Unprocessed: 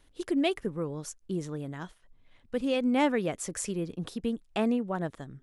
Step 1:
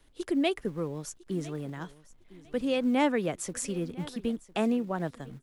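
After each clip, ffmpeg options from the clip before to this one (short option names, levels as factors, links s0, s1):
-filter_complex "[0:a]aecho=1:1:1004|2008:0.1|0.023,acrossover=split=150|560|4800[s0][s1][s2][s3];[s0]acrusher=bits=3:mode=log:mix=0:aa=0.000001[s4];[s4][s1][s2][s3]amix=inputs=4:normalize=0"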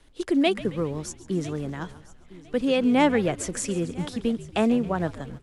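-filter_complex "[0:a]lowpass=10000,asplit=6[s0][s1][s2][s3][s4][s5];[s1]adelay=137,afreqshift=-76,volume=0.141[s6];[s2]adelay=274,afreqshift=-152,volume=0.0804[s7];[s3]adelay=411,afreqshift=-228,volume=0.0457[s8];[s4]adelay=548,afreqshift=-304,volume=0.0263[s9];[s5]adelay=685,afreqshift=-380,volume=0.015[s10];[s0][s6][s7][s8][s9][s10]amix=inputs=6:normalize=0,volume=1.88"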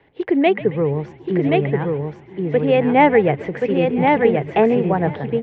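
-af "highpass=110,equalizer=f=140:t=q:w=4:g=9,equalizer=f=240:t=q:w=4:g=-4,equalizer=f=440:t=q:w=4:g=8,equalizer=f=810:t=q:w=4:g=8,equalizer=f=1300:t=q:w=4:g=-6,equalizer=f=2000:t=q:w=4:g=7,lowpass=f=2700:w=0.5412,lowpass=f=2700:w=1.3066,aecho=1:1:1078:0.708,volume=1.68"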